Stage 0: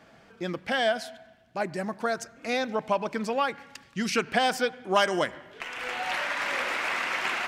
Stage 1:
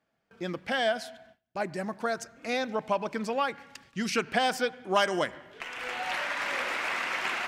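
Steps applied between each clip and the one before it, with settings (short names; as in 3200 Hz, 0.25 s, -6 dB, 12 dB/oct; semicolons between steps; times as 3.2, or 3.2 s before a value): gate with hold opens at -43 dBFS; gain -2 dB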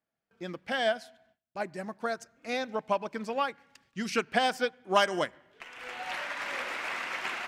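upward expander 1.5:1, over -46 dBFS; gain +1.5 dB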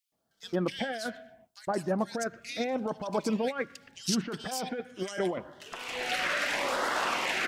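negative-ratio compressor -35 dBFS, ratio -1; LFO notch sine 0.77 Hz 830–2500 Hz; bands offset in time highs, lows 0.12 s, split 2300 Hz; gain +6.5 dB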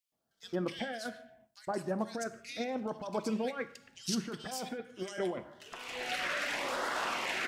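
non-linear reverb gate 0.2 s falling, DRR 12 dB; gain -5 dB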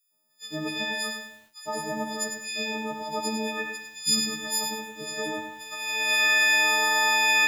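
frequency quantiser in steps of 6 st; analogue delay 67 ms, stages 2048, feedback 36%, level -10 dB; lo-fi delay 0.1 s, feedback 35%, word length 9-bit, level -7 dB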